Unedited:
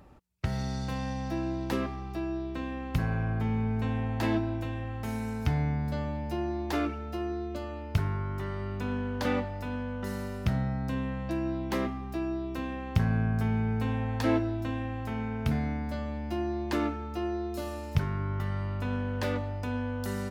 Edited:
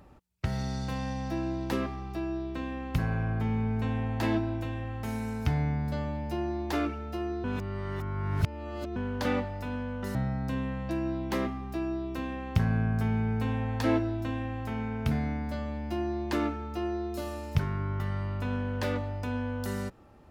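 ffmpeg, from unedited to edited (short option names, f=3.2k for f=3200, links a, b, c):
-filter_complex "[0:a]asplit=4[a][b][c][d];[a]atrim=end=7.442[e];[b]atrim=start=7.438:end=8.962,asetpts=PTS-STARTPTS,areverse[f];[c]atrim=start=8.958:end=10.152[g];[d]atrim=start=10.548[h];[e][f]acrossfade=d=0.004:c1=hsin:c2=hsin[i];[i][g]acrossfade=d=0.004:c1=hsin:c2=hsin[j];[j][h]acrossfade=d=0.004:c1=hsin:c2=hsin"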